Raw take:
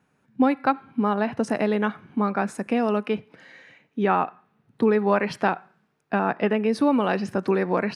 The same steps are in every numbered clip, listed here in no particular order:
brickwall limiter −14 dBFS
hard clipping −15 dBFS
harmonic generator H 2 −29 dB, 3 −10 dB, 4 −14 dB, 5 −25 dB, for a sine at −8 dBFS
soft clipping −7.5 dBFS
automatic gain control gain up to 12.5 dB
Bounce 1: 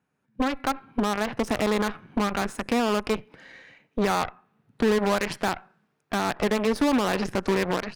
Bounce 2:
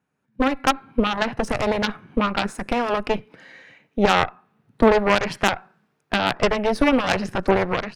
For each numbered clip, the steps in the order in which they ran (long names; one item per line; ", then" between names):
soft clipping, then automatic gain control, then harmonic generator, then brickwall limiter, then hard clipping
harmonic generator, then soft clipping, then brickwall limiter, then hard clipping, then automatic gain control